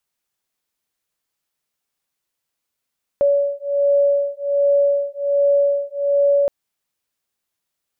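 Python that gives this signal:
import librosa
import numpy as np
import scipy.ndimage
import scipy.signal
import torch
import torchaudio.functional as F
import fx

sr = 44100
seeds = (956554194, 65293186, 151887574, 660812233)

y = fx.two_tone_beats(sr, length_s=3.27, hz=566.0, beat_hz=1.3, level_db=-17.5)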